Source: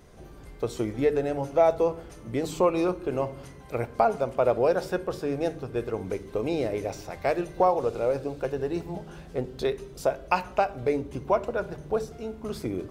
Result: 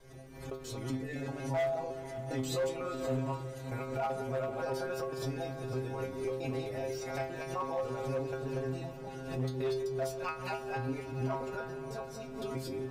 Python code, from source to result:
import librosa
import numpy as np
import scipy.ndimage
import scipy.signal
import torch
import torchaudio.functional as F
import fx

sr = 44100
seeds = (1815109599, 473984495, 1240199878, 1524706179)

p1 = fx.local_reverse(x, sr, ms=128.0)
p2 = fx.dynamic_eq(p1, sr, hz=470.0, q=1.6, threshold_db=-35.0, ratio=4.0, max_db=-4)
p3 = fx.over_compress(p2, sr, threshold_db=-32.0, ratio=-1.0)
p4 = p2 + F.gain(torch.from_numpy(p3), 1.5).numpy()
p5 = fx.stiff_resonator(p4, sr, f0_hz=130.0, decay_s=0.42, stiffness=0.002)
p6 = np.clip(p5, -10.0 ** (-28.0 / 20.0), 10.0 ** (-28.0 / 20.0))
p7 = fx.echo_diffused(p6, sr, ms=511, feedback_pct=58, wet_db=-13)
y = fx.pre_swell(p7, sr, db_per_s=67.0)